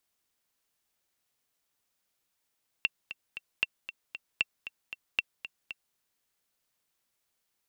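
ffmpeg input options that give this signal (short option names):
-f lavfi -i "aevalsrc='pow(10,(-12-13*gte(mod(t,3*60/231),60/231))/20)*sin(2*PI*2710*mod(t,60/231))*exp(-6.91*mod(t,60/231)/0.03)':d=3.11:s=44100"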